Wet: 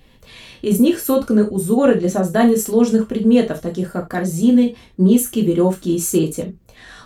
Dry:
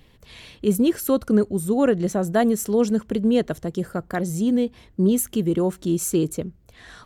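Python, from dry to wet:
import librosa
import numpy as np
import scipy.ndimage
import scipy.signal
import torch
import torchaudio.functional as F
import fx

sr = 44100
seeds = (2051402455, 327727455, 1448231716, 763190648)

p1 = fx.level_steps(x, sr, step_db=10)
p2 = x + F.gain(torch.from_numpy(p1), 1.0).numpy()
p3 = fx.rev_gated(p2, sr, seeds[0], gate_ms=100, shape='falling', drr_db=0.5)
y = F.gain(torch.from_numpy(p3), -2.5).numpy()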